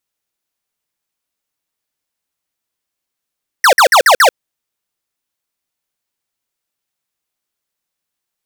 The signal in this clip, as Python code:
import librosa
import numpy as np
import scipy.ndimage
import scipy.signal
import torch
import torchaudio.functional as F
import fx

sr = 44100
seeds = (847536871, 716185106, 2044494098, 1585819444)

y = fx.laser_zaps(sr, level_db=-7, start_hz=2000.0, end_hz=460.0, length_s=0.09, wave='square', shots=5, gap_s=0.05)